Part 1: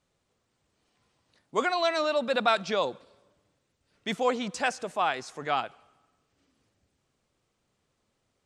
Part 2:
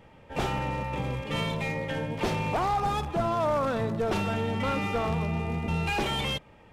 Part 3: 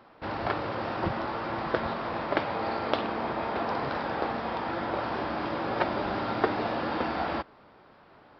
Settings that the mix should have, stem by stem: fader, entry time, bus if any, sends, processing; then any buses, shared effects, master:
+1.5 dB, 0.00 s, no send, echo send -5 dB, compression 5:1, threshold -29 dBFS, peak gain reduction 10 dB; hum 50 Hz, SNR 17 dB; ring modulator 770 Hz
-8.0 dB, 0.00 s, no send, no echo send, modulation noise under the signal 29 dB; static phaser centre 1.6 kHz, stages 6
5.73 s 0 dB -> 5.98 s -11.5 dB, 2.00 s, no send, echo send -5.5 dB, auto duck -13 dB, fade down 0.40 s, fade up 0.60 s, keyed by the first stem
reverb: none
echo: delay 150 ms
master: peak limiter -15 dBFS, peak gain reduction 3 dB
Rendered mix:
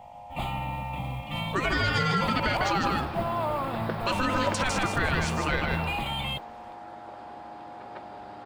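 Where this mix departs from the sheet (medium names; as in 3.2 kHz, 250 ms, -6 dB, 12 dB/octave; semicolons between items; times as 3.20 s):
stem 1 +1.5 dB -> +10.5 dB; stem 2 -8.0 dB -> -0.5 dB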